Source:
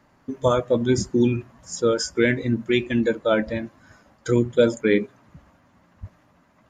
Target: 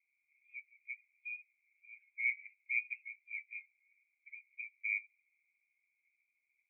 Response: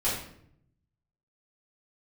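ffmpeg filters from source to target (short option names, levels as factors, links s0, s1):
-af "asuperpass=centerf=2300:order=8:qfactor=7.1,volume=0.794"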